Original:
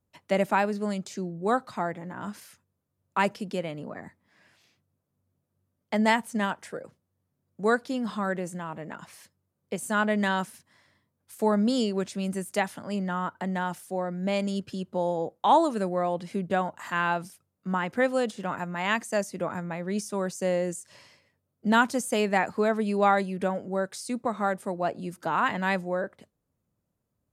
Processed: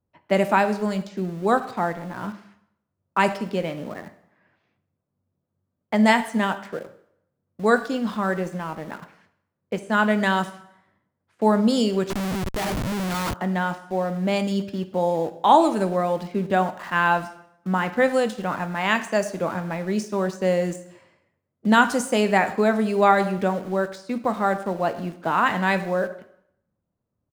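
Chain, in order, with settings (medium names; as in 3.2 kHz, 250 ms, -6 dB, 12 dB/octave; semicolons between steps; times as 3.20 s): speakerphone echo 110 ms, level -21 dB; level-controlled noise filter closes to 1.6 kHz, open at -21.5 dBFS; in parallel at -3 dB: small samples zeroed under -38.5 dBFS; on the sum: plate-style reverb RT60 0.73 s, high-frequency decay 0.9×, DRR 9.5 dB; 12.10–13.34 s: Schmitt trigger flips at -33.5 dBFS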